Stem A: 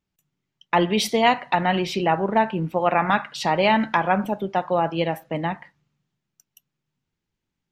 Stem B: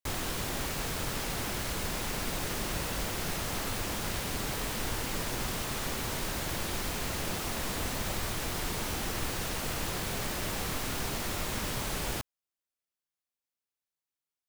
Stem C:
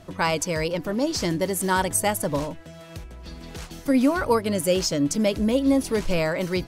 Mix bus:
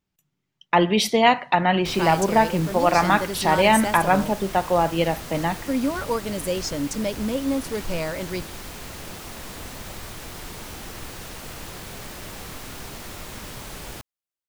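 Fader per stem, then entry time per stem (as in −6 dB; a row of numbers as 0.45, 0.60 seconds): +1.5, −3.0, −4.5 decibels; 0.00, 1.80, 1.80 seconds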